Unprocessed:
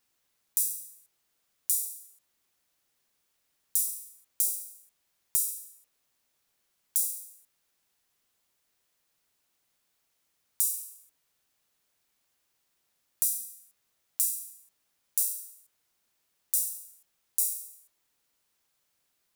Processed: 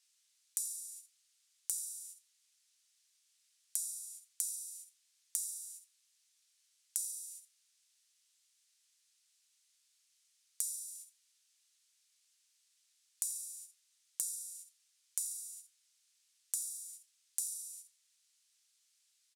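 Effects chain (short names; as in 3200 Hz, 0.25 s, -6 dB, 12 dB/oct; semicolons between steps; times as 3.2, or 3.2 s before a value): weighting filter ITU-R 468; gate -47 dBFS, range -9 dB; passive tone stack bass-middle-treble 10-0-10; compressor 6:1, threshold -41 dBFS, peak gain reduction 22.5 dB; echo 85 ms -19.5 dB; gain +4 dB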